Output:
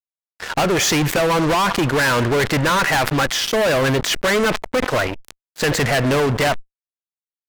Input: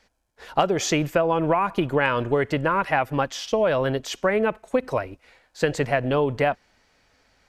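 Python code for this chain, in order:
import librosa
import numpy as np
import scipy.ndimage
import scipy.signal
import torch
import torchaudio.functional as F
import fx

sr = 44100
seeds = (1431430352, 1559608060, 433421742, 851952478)

y = fx.peak_eq(x, sr, hz=1700.0, db=7.5, octaves=1.1)
y = fx.fuzz(y, sr, gain_db=30.0, gate_db=-39.0)
y = fx.sustainer(y, sr, db_per_s=71.0)
y = F.gain(torch.from_numpy(y), -2.0).numpy()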